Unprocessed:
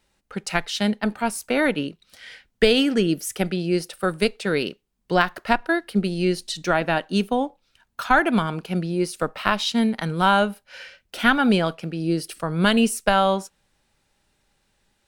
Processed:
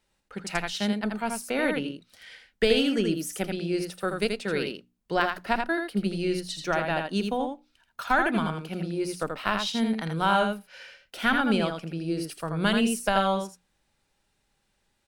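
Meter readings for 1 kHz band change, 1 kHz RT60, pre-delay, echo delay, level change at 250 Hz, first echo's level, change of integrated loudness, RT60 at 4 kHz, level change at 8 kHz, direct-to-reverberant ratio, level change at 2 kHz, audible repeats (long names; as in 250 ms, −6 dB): −5.0 dB, no reverb audible, no reverb audible, 82 ms, −5.0 dB, −5.0 dB, −5.0 dB, no reverb audible, −5.0 dB, no reverb audible, −5.0 dB, 1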